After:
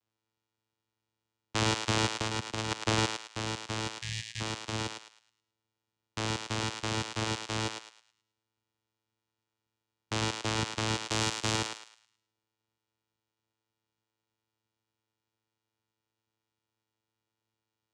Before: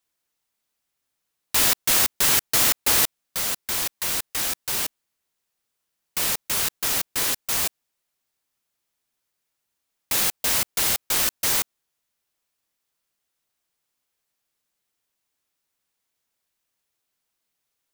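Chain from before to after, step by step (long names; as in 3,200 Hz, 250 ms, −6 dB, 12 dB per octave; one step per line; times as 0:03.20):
channel vocoder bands 4, saw 110 Hz
0:02.19–0:02.85: compressor whose output falls as the input rises −27 dBFS, ratio −0.5
0:03.92–0:04.41: gain on a spectral selection 200–1,600 Hz −23 dB
0:11.02–0:11.56: high-shelf EQ 5,100 Hz +7 dB
feedback echo with a high-pass in the loop 107 ms, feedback 34%, high-pass 730 Hz, level −5 dB
level −4.5 dB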